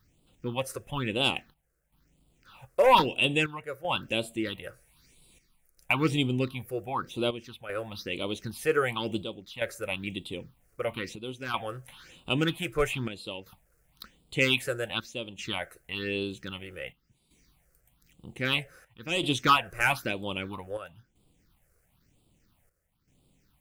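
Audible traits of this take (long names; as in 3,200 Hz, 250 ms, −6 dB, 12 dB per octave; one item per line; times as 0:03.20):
a quantiser's noise floor 12 bits, dither none
chopped level 0.52 Hz, depth 65%, duty 80%
phaser sweep stages 6, 1 Hz, lowest notch 230–1,700 Hz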